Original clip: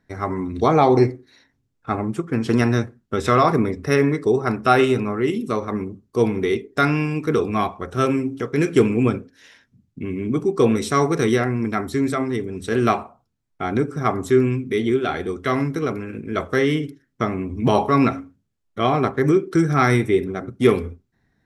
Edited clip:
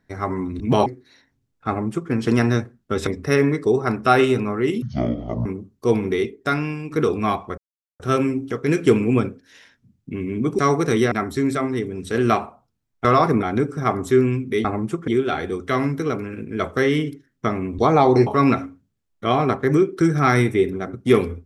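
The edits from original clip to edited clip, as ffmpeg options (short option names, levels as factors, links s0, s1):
-filter_complex "[0:a]asplit=16[s0][s1][s2][s3][s4][s5][s6][s7][s8][s9][s10][s11][s12][s13][s14][s15];[s0]atrim=end=0.602[s16];[s1]atrim=start=17.548:end=17.812[s17];[s2]atrim=start=1.078:end=3.292[s18];[s3]atrim=start=3.668:end=5.424[s19];[s4]atrim=start=5.42:end=5.77,asetpts=PTS-STARTPTS,asetrate=24255,aresample=44100[s20];[s5]atrim=start=5.766:end=7.22,asetpts=PTS-STARTPTS,afade=t=out:st=0.624:d=0.83:silence=0.398107[s21];[s6]atrim=start=7.22:end=7.89,asetpts=PTS-STARTPTS,afade=t=in:d=0.004:c=hsin:silence=0.398107,afade=t=out:st=0.666:d=0.004:c=hsin,apad=pad_dur=0.42[s22];[s7]atrim=start=7.89:end=10.482,asetpts=PTS-STARTPTS,afade=t=in:d=0.004:c=hsin[s23];[s8]atrim=start=10.898:end=11.432[s24];[s9]atrim=start=11.688:end=13.622[s25];[s10]atrim=start=3.288:end=3.672[s26];[s11]atrim=start=13.618:end=14.842[s27];[s12]atrim=start=1.898:end=2.332[s28];[s13]atrim=start=14.838:end=17.552[s29];[s14]atrim=start=0.598:end=1.082[s30];[s15]atrim=start=17.808[s31];[s16][s17]acrossfade=d=0.004:c1=hsin:c2=hsin[s32];[s32][s18]acrossfade=d=0.004:c1=hsin:c2=hsin[s33];[s33][s19]acrossfade=d=0.004:c1=hsin:c2=hsin[s34];[s34][s20]acrossfade=d=0.004:c1=hsin:c2=hsin[s35];[s21][s22][s23]concat=n=3:v=0:a=1[s36];[s35][s36]acrossfade=d=0.004:c1=hsin:c2=hsin[s37];[s37][s24]acrossfade=d=0.004:c1=hsin:c2=hsin[s38];[s38][s25]acrossfade=d=0.004:c1=hsin:c2=hsin[s39];[s39][s26]acrossfade=d=0.004:c1=hsin:c2=hsin[s40];[s40][s27]acrossfade=d=0.004:c1=hsin:c2=hsin[s41];[s41][s28]acrossfade=d=0.004:c1=hsin:c2=hsin[s42];[s42][s29]acrossfade=d=0.004:c1=hsin:c2=hsin[s43];[s43][s30]acrossfade=d=0.004:c1=hsin:c2=hsin[s44];[s44][s31]acrossfade=d=0.004:c1=hsin:c2=hsin"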